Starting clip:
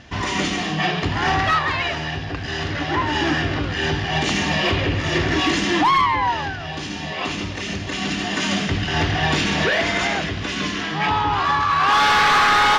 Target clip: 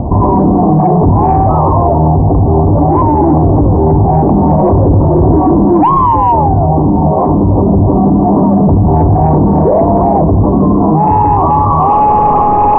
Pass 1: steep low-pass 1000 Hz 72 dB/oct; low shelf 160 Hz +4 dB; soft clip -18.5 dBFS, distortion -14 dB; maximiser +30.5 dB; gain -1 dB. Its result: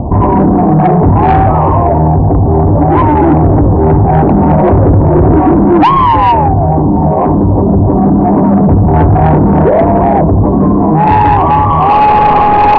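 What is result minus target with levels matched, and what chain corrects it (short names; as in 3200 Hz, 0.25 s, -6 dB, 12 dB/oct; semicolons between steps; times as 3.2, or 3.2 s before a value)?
soft clip: distortion +15 dB
steep low-pass 1000 Hz 72 dB/oct; low shelf 160 Hz +4 dB; soft clip -8.5 dBFS, distortion -29 dB; maximiser +30.5 dB; gain -1 dB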